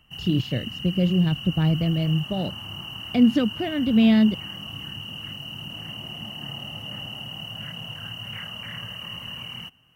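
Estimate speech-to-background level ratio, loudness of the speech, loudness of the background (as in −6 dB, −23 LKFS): 11.5 dB, −22.5 LKFS, −34.0 LKFS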